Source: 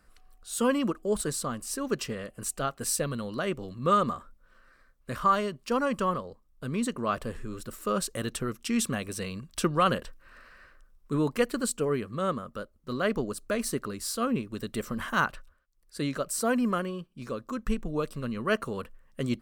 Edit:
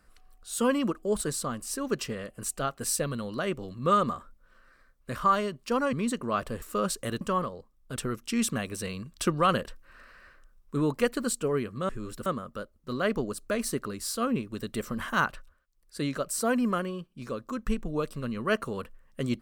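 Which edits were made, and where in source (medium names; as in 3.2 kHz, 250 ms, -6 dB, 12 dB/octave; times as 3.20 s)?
5.93–6.68 s: move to 8.33 s
7.37–7.74 s: move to 12.26 s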